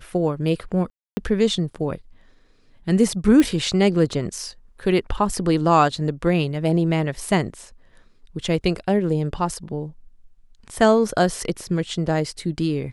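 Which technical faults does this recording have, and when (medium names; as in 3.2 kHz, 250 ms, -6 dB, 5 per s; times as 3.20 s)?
0.90–1.17 s: dropout 270 ms
3.40 s: pop -7 dBFS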